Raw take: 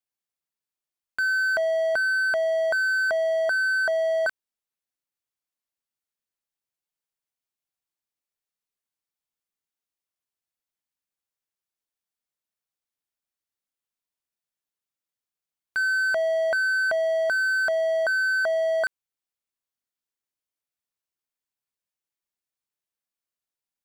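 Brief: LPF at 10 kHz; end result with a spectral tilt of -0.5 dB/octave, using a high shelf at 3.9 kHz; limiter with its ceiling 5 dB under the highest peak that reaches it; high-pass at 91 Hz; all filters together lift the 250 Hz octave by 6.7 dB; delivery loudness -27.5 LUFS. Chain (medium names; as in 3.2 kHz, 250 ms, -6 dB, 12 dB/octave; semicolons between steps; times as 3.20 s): high-pass 91 Hz; low-pass 10 kHz; peaking EQ 250 Hz +9 dB; treble shelf 3.9 kHz -8 dB; trim -1 dB; peak limiter -23.5 dBFS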